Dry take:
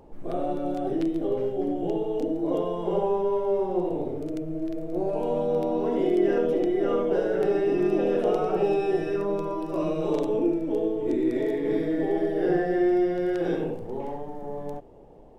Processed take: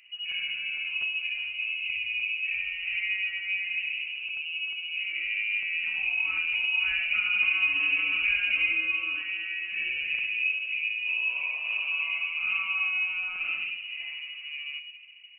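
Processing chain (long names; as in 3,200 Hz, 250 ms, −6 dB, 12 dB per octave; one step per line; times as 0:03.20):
0:06.51–0:08.73: comb filter 4.9 ms, depth 89%
rectangular room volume 1,100 cubic metres, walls mixed, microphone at 0.61 metres
voice inversion scrambler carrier 2,900 Hz
level −6 dB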